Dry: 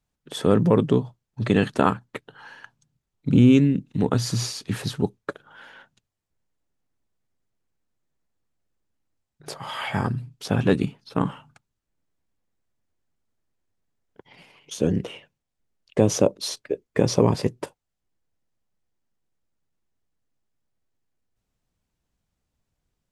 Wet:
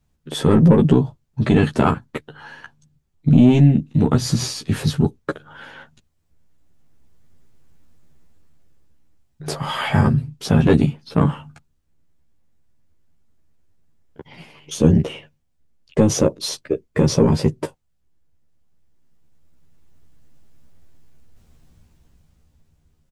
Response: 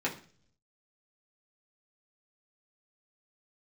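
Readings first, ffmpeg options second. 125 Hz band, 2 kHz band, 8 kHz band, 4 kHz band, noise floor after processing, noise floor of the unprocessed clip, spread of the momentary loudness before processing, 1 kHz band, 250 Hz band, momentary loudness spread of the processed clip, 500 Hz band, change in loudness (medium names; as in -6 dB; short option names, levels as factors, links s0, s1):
+7.5 dB, +3.5 dB, +4.0 dB, +4.0 dB, -66 dBFS, -82 dBFS, 19 LU, +3.0 dB, +5.0 dB, 18 LU, +2.5 dB, +5.0 dB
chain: -filter_complex "[0:a]lowshelf=f=250:g=10.5,asplit=2[s0][s1];[s1]alimiter=limit=0.299:level=0:latency=1:release=31,volume=0.708[s2];[s0][s2]amix=inputs=2:normalize=0,dynaudnorm=f=410:g=9:m=5.01,asoftclip=type=tanh:threshold=0.631,asplit=2[s3][s4];[s4]adelay=13,volume=0.708[s5];[s3][s5]amix=inputs=2:normalize=0"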